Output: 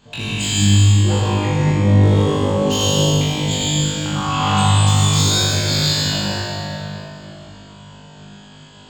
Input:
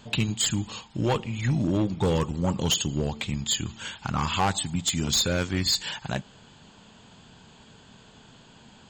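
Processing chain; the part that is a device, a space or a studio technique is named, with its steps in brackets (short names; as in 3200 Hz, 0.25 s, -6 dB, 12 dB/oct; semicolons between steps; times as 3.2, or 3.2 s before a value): tunnel (flutter echo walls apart 3.4 m, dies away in 1.3 s; reverb RT60 3.5 s, pre-delay 69 ms, DRR -5.5 dB); gain -4.5 dB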